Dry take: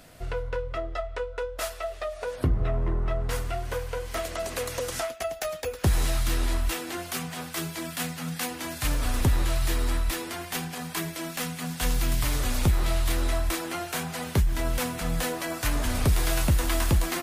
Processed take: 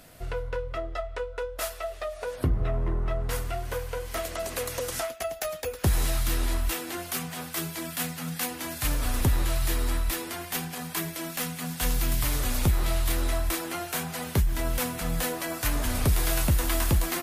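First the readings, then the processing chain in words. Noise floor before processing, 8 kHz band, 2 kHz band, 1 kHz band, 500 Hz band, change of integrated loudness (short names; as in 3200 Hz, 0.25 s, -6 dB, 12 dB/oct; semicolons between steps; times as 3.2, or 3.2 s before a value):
-40 dBFS, +1.0 dB, -1.0 dB, -1.0 dB, -1.0 dB, -0.5 dB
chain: bell 13000 Hz +6 dB 0.67 oct; gain -1 dB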